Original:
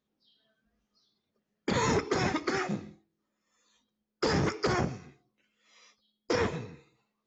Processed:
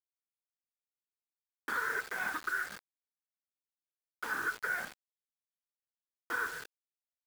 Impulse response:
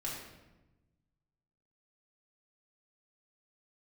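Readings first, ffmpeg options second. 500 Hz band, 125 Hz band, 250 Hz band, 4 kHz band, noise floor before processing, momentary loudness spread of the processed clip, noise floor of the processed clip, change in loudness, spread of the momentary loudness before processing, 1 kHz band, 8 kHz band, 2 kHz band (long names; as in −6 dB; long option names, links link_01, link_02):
−18.0 dB, −29.0 dB, −21.5 dB, −12.0 dB, −84 dBFS, 12 LU, below −85 dBFS, −5.5 dB, 11 LU, −5.5 dB, can't be measured, +3.0 dB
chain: -filter_complex "[0:a]afftfilt=real='re*pow(10,11/40*sin(2*PI*(0.53*log(max(b,1)*sr/1024/100)/log(2)-(1.5)*(pts-256)/sr)))':imag='im*pow(10,11/40*sin(2*PI*(0.53*log(max(b,1)*sr/1024/100)/log(2)-(1.5)*(pts-256)/sr)))':win_size=1024:overlap=0.75,highpass=frequency=62:poles=1,bandreject=frequency=262.3:width_type=h:width=4,bandreject=frequency=524.6:width_type=h:width=4,bandreject=frequency=786.9:width_type=h:width=4,bandreject=frequency=1049.2:width_type=h:width=4,bandreject=frequency=1311.5:width_type=h:width=4,bandreject=frequency=1573.8:width_type=h:width=4,bandreject=frequency=1836.1:width_type=h:width=4,bandreject=frequency=2098.4:width_type=h:width=4,bandreject=frequency=2360.7:width_type=h:width=4,bandreject=frequency=2623:width_type=h:width=4,bandreject=frequency=2885.3:width_type=h:width=4,bandreject=frequency=3147.6:width_type=h:width=4,asplit=2[link_01][link_02];[link_02]acrusher=samples=31:mix=1:aa=0.000001,volume=-5dB[link_03];[link_01][link_03]amix=inputs=2:normalize=0,lowpass=frequency=1500:width_type=q:width=15,aderivative,alimiter=level_in=3.5dB:limit=-24dB:level=0:latency=1:release=317,volume=-3.5dB,equalizer=frequency=470:width_type=o:width=0.22:gain=4.5,aecho=1:1:172:0.0794,acrusher=bits=7:mix=0:aa=0.000001,volume=3dB"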